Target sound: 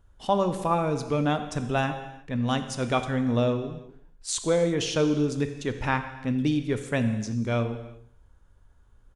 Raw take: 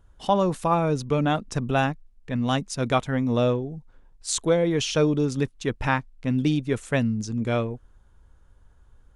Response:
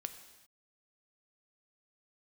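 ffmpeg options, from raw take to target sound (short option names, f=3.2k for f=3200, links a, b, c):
-filter_complex "[0:a]aecho=1:1:85|170|255|340:0.0891|0.0472|0.025|0.0133[a];[1:a]atrim=start_sample=2205,afade=t=out:st=0.42:d=0.01,atrim=end_sample=18963[b];[a][b]afir=irnorm=-1:irlink=0"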